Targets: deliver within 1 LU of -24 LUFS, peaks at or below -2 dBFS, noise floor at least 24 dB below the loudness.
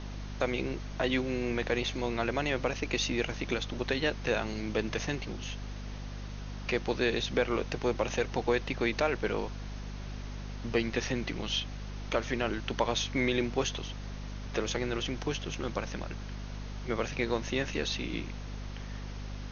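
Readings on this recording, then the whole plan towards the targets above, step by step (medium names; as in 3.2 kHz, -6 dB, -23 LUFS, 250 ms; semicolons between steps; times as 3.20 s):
hum 50 Hz; highest harmonic 250 Hz; hum level -37 dBFS; noise floor -40 dBFS; noise floor target -57 dBFS; loudness -33.0 LUFS; peak level -13.0 dBFS; loudness target -24.0 LUFS
-> de-hum 50 Hz, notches 5; noise reduction 17 dB, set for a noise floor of -40 dBFS; trim +9 dB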